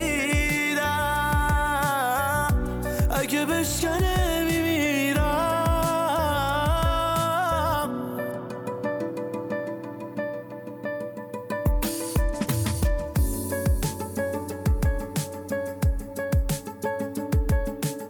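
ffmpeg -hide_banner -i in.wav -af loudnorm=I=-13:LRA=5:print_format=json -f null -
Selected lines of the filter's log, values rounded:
"input_i" : "-25.9",
"input_tp" : "-12.6",
"input_lra" : "4.9",
"input_thresh" : "-36.0",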